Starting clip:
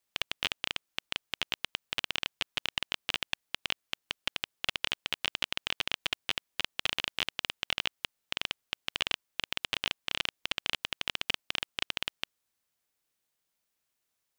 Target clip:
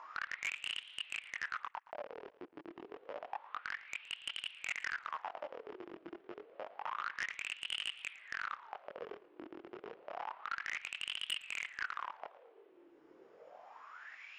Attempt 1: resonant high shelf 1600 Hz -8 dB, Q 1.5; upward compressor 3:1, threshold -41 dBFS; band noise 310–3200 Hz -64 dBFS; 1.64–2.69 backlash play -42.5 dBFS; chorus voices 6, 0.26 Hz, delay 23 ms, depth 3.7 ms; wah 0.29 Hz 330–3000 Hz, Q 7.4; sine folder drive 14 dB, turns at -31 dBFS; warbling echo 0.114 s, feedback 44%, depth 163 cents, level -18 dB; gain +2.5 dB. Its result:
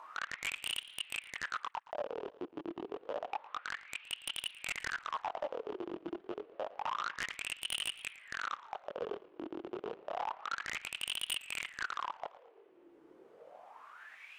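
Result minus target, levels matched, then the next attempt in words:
8000 Hz band +5.0 dB
rippled Chebyshev low-pass 7100 Hz, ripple 9 dB; resonant high shelf 1600 Hz -8 dB, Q 1.5; upward compressor 3:1, threshold -41 dBFS; band noise 310–3200 Hz -64 dBFS; 1.64–2.69 backlash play -42.5 dBFS; chorus voices 6, 0.26 Hz, delay 23 ms, depth 3.7 ms; wah 0.29 Hz 330–3000 Hz, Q 7.4; sine folder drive 14 dB, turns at -31 dBFS; warbling echo 0.114 s, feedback 44%, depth 163 cents, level -18 dB; gain +2.5 dB

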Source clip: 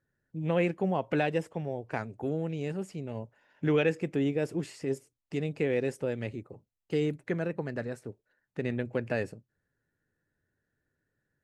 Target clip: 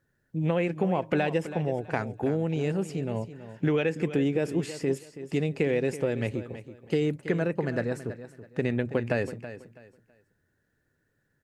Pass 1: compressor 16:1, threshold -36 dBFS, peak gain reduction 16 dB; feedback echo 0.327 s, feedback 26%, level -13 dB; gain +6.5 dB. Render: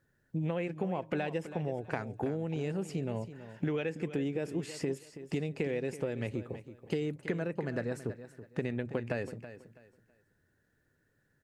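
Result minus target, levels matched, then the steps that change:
compressor: peak gain reduction +8 dB
change: compressor 16:1, threshold -27.5 dBFS, peak gain reduction 8 dB

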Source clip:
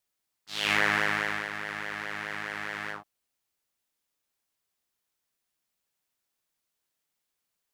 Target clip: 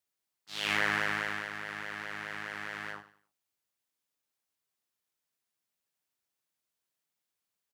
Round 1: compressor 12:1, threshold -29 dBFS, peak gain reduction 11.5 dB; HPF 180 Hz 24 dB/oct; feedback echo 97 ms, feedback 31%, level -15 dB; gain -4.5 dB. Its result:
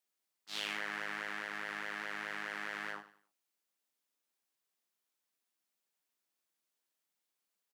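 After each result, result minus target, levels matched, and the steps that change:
compressor: peak gain reduction +11.5 dB; 125 Hz band -6.5 dB
remove: compressor 12:1, threshold -29 dBFS, peak gain reduction 11.5 dB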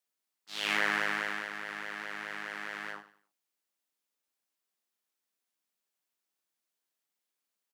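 125 Hz band -7.0 dB
change: HPF 65 Hz 24 dB/oct

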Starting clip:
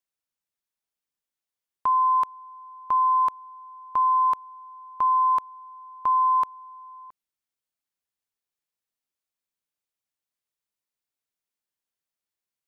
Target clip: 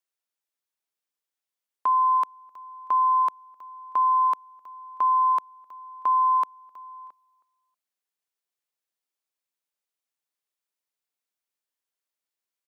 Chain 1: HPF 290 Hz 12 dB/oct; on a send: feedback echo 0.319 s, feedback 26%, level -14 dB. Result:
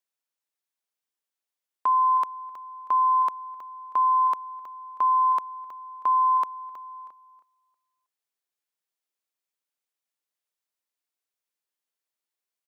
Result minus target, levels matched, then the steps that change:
echo-to-direct +6.5 dB
change: feedback echo 0.319 s, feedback 26%, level -20.5 dB

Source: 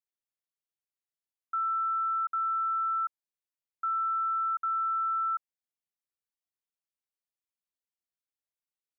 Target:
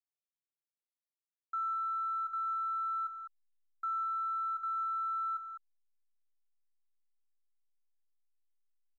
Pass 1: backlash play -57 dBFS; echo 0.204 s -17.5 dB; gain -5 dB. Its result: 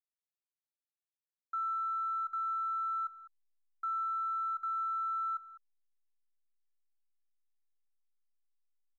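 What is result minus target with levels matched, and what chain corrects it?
echo-to-direct -7.5 dB
backlash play -57 dBFS; echo 0.204 s -10 dB; gain -5 dB

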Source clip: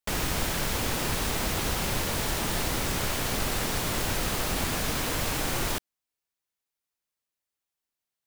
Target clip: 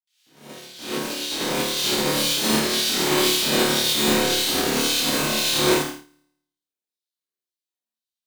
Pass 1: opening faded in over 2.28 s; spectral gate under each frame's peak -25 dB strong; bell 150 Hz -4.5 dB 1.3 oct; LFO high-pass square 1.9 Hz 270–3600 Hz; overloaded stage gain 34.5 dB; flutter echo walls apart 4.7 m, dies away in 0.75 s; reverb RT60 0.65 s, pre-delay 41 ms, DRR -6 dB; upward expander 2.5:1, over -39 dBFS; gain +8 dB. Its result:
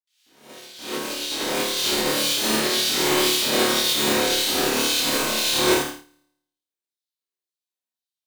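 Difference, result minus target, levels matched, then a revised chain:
125 Hz band -5.0 dB
opening faded in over 2.28 s; spectral gate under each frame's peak -25 dB strong; bell 150 Hz +4.5 dB 1.3 oct; LFO high-pass square 1.9 Hz 270–3600 Hz; overloaded stage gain 34.5 dB; flutter echo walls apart 4.7 m, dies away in 0.75 s; reverb RT60 0.65 s, pre-delay 41 ms, DRR -6 dB; upward expander 2.5:1, over -39 dBFS; gain +8 dB

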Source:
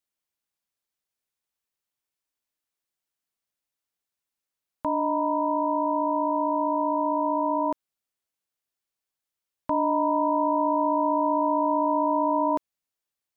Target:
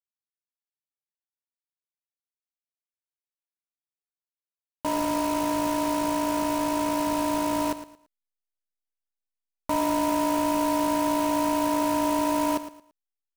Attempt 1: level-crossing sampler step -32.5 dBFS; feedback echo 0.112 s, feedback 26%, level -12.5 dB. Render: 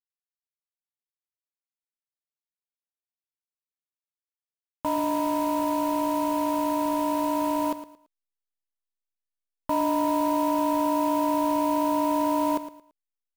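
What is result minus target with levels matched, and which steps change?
level-crossing sampler: distortion -7 dB
change: level-crossing sampler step -26.5 dBFS

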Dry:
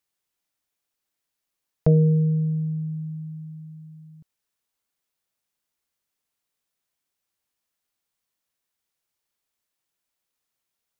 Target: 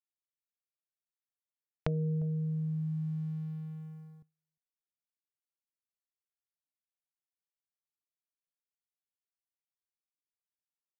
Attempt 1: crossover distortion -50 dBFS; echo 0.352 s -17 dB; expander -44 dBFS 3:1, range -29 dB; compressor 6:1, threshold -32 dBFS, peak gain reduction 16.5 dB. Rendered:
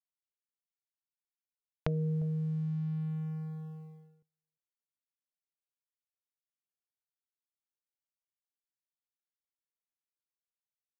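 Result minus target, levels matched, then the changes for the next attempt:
crossover distortion: distortion +9 dB
change: crossover distortion -59 dBFS

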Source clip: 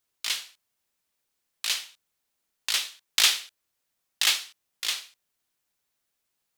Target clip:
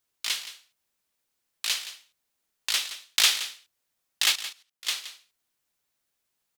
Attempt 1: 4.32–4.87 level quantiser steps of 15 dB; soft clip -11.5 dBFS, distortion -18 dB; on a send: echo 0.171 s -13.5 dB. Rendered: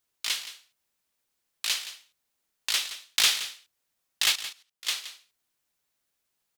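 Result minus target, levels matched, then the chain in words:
soft clip: distortion +15 dB
4.32–4.87 level quantiser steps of 15 dB; soft clip -2.5 dBFS, distortion -33 dB; on a send: echo 0.171 s -13.5 dB

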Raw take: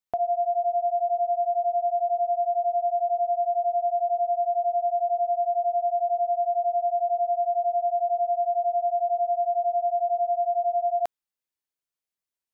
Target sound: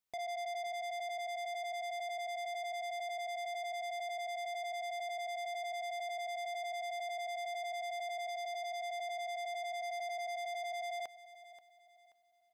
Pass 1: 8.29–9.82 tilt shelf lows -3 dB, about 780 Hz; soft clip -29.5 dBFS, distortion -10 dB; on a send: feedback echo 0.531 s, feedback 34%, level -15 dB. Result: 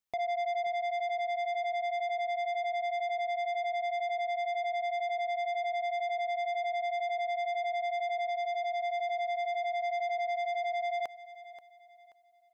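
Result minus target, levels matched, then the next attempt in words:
soft clip: distortion -4 dB
8.29–9.82 tilt shelf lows -3 dB, about 780 Hz; soft clip -38.5 dBFS, distortion -5 dB; on a send: feedback echo 0.531 s, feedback 34%, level -15 dB

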